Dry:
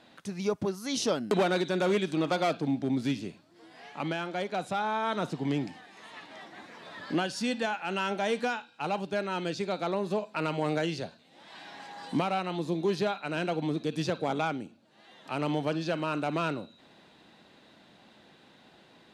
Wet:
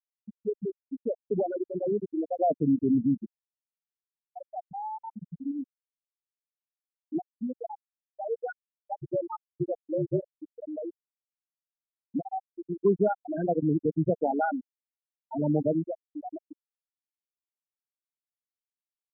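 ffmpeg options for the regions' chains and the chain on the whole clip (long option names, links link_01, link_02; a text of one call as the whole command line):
ffmpeg -i in.wav -filter_complex "[0:a]asettb=1/sr,asplit=3[link_01][link_02][link_03];[link_01]atrim=end=2.384[link_04];[link_02]atrim=start=2.38:end=3.26,asetpts=PTS-STARTPTS,afade=type=in:duration=0.004:curve=qsin,afade=type=out:start_time=0.876:duration=0.004:curve=qsin,acontrast=83,asoftclip=type=hard:threshold=-18dB[link_05];[link_03]atrim=start=3.256[link_06];[link_04][link_05]acrossfade=duration=0.004:curve1=hsin:curve2=qsin[link_07];[link_07][link_06]acrossfade=duration=0.004:curve1=qsin:curve2=hsin,asettb=1/sr,asplit=3[link_08][link_09][link_10];[link_08]atrim=end=4.634[link_11];[link_09]atrim=start=4.63:end=7.15,asetpts=PTS-STARTPTS,afade=type=in:duration=0.004:curve=qsin,afade=type=out:start_time=2.516:duration=0.004:curve=qsin,lowshelf=frequency=460:gain=3.5,asoftclip=type=hard:threshold=-25.5dB[link_12];[link_10]atrim=start=7.146[link_13];[link_11][link_12]acrossfade=duration=0.004:curve1=hsin:curve2=qsin[link_14];[link_14][link_13]acrossfade=duration=0.004:curve1=qsin:curve2=hsin,asettb=1/sr,asplit=3[link_15][link_16][link_17];[link_15]atrim=end=8.964[link_18];[link_16]atrim=start=8.96:end=10.34,asetpts=PTS-STARTPTS,afade=type=in:duration=0.004:curve=qsin,afade=type=out:start_time=1.376:duration=0.004:curve=qsin,afreqshift=-51,aecho=1:1:5.6:0.78,atrim=end_sample=60858[link_19];[link_17]atrim=start=10.336[link_20];[link_18][link_19]acrossfade=duration=0.004:curve1=hsin:curve2=qsin[link_21];[link_21][link_20]acrossfade=duration=0.004:curve1=qsin:curve2=hsin,asettb=1/sr,asplit=3[link_22][link_23][link_24];[link_22]atrim=end=12.854[link_25];[link_23]atrim=start=12.85:end=15.85,asetpts=PTS-STARTPTS,afade=type=in:duration=0.004:curve=qsin,afade=type=out:start_time=2.996:duration=0.004:curve=qsin,acontrast=50,acrusher=bits=3:mode=log:mix=0:aa=0.000001[link_26];[link_24]atrim=start=15.846[link_27];[link_25][link_26]acrossfade=duration=0.004:curve1=hsin:curve2=qsin[link_28];[link_28][link_27]acrossfade=duration=0.004:curve1=qsin:curve2=hsin,afftfilt=real='re*gte(hypot(re,im),0.282)':imag='im*gte(hypot(re,im),0.282)':win_size=1024:overlap=0.75,lowpass=1800,anlmdn=0.00398" out.wav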